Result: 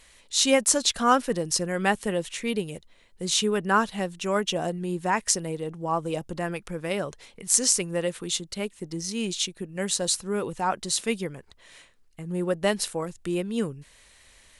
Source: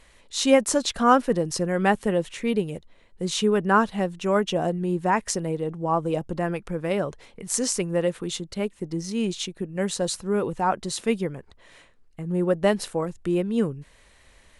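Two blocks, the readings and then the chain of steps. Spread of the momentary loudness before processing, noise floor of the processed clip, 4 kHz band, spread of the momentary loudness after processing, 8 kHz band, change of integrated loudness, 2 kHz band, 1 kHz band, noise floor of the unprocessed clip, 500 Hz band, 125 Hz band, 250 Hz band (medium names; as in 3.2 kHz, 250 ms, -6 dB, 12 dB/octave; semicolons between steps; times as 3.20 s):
11 LU, -57 dBFS, +4.0 dB, 12 LU, +5.5 dB, -1.5 dB, 0.0 dB, -2.5 dB, -56 dBFS, -4.0 dB, -4.5 dB, -4.5 dB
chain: treble shelf 2.2 kHz +11 dB; trim -4.5 dB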